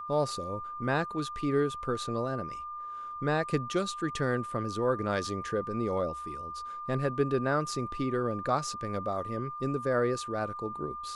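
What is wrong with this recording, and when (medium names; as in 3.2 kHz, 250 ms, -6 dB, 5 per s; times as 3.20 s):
whine 1.2 kHz -37 dBFS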